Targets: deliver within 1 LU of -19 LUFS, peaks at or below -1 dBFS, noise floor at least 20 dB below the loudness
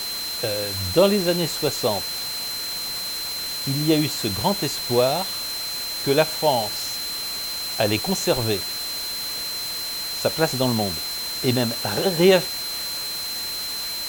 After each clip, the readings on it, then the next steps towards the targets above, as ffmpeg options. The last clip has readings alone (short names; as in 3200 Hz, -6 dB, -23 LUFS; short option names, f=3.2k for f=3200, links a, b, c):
steady tone 4100 Hz; tone level -28 dBFS; noise floor -29 dBFS; noise floor target -43 dBFS; loudness -22.5 LUFS; peak -5.0 dBFS; loudness target -19.0 LUFS
-> -af "bandreject=f=4.1k:w=30"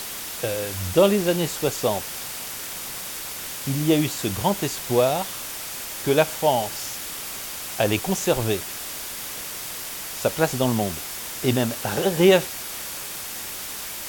steady tone none; noise floor -34 dBFS; noise floor target -45 dBFS
-> -af "afftdn=nr=11:nf=-34"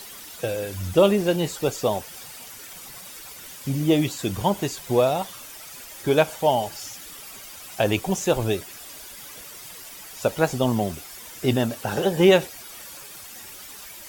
noise floor -41 dBFS; noise floor target -44 dBFS
-> -af "afftdn=nr=6:nf=-41"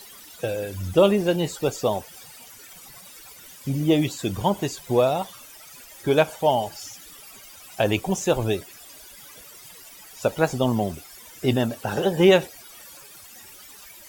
noise floor -46 dBFS; loudness -23.5 LUFS; peak -6.0 dBFS; loudness target -19.0 LUFS
-> -af "volume=4.5dB"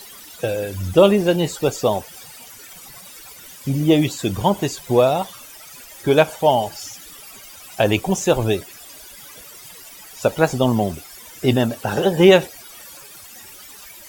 loudness -19.0 LUFS; peak -1.5 dBFS; noise floor -41 dBFS